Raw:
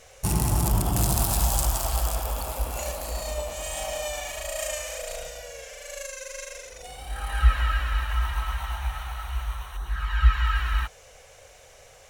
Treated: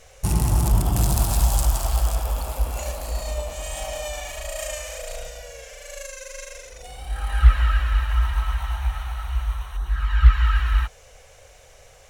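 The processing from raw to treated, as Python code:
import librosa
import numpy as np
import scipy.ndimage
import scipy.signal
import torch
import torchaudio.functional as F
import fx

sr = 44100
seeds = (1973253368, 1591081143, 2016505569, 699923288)

y = fx.low_shelf(x, sr, hz=86.0, db=8.0)
y = fx.doppler_dist(y, sr, depth_ms=0.31)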